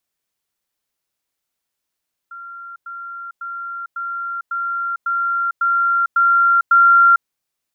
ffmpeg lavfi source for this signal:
-f lavfi -i "aevalsrc='pow(10,(-31.5+3*floor(t/0.55))/20)*sin(2*PI*1380*t)*clip(min(mod(t,0.55),0.45-mod(t,0.55))/0.005,0,1)':d=4.95:s=44100"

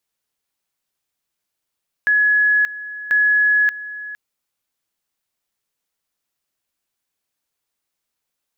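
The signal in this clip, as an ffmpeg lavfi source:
-f lavfi -i "aevalsrc='pow(10,(-12-16*gte(mod(t,1.04),0.58))/20)*sin(2*PI*1690*t)':d=2.08:s=44100"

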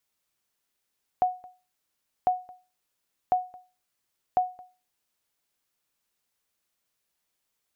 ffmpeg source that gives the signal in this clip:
-f lavfi -i "aevalsrc='0.178*(sin(2*PI*733*mod(t,1.05))*exp(-6.91*mod(t,1.05)/0.32)+0.0631*sin(2*PI*733*max(mod(t,1.05)-0.22,0))*exp(-6.91*max(mod(t,1.05)-0.22,0)/0.32))':d=4.2:s=44100"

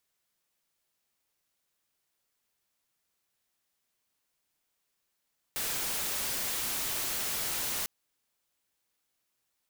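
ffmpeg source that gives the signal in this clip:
-f lavfi -i "anoisesrc=c=white:a=0.0388:d=2.3:r=44100:seed=1"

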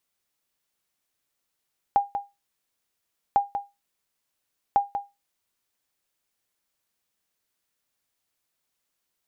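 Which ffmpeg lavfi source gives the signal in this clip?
-f lavfi -i "aevalsrc='0.266*(sin(2*PI*806*mod(t,1.4))*exp(-6.91*mod(t,1.4)/0.22)+0.355*sin(2*PI*806*max(mod(t,1.4)-0.19,0))*exp(-6.91*max(mod(t,1.4)-0.19,0)/0.22))':d=4.2:s=44100"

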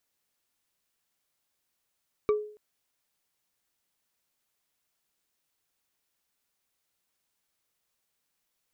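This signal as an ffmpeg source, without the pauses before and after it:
-f lavfi -i "aevalsrc='0.119*pow(10,-3*t/0.49)*sin(2*PI*422*t)+0.0422*pow(10,-3*t/0.145)*sin(2*PI*1163.5*t)+0.015*pow(10,-3*t/0.065)*sin(2*PI*2280.5*t)+0.00531*pow(10,-3*t/0.035)*sin(2*PI*3769.7*t)+0.00188*pow(10,-3*t/0.022)*sin(2*PI*5629.5*t)':d=0.28:s=44100"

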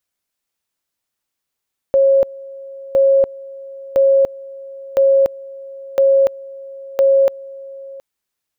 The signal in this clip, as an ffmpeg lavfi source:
-f lavfi -i "aevalsrc='pow(10,(-8.5-21.5*gte(mod(t,1.01),0.29))/20)*sin(2*PI*545*t)':d=6.06:s=44100"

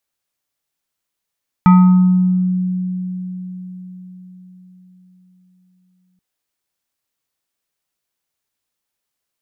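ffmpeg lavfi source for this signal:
-f lavfi -i "aevalsrc='0.631*pow(10,-3*t/4.92)*sin(2*PI*183*t+0.6*pow(10,-3*t/1.13)*sin(2*PI*5.9*183*t))':d=4.53:s=44100"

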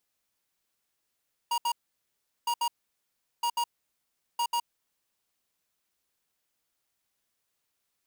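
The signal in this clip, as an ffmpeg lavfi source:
-f lavfi -i "aevalsrc='0.0422*(2*lt(mod(948*t,1),0.5)-1)*clip(min(mod(mod(t,0.96),0.14),0.07-mod(mod(t,0.96),0.14))/0.005,0,1)*lt(mod(t,0.96),0.28)':d=3.84:s=44100"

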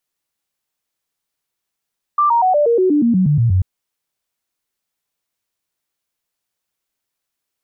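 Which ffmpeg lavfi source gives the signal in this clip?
-f lavfi -i "aevalsrc='0.299*clip(min(mod(t,0.12),0.12-mod(t,0.12))/0.005,0,1)*sin(2*PI*1180*pow(2,-floor(t/0.12)/3)*mod(t,0.12))':d=1.44:s=44100"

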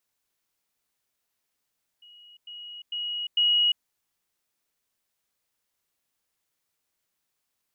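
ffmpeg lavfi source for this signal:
-f lavfi -i "aevalsrc='pow(10,(-48.5+10*floor(t/0.45))/20)*sin(2*PI*2900*t)*clip(min(mod(t,0.45),0.35-mod(t,0.45))/0.005,0,1)':d=1.8:s=44100"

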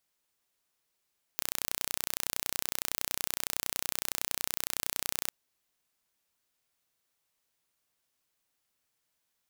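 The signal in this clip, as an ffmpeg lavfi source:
-f lavfi -i "aevalsrc='0.631*eq(mod(n,1432),0)':d=3.91:s=44100"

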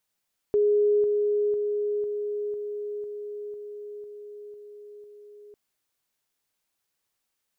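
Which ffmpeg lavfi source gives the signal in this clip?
-f lavfi -i "aevalsrc='pow(10,(-18-3*floor(t/0.5))/20)*sin(2*PI*415*t)':d=5:s=44100"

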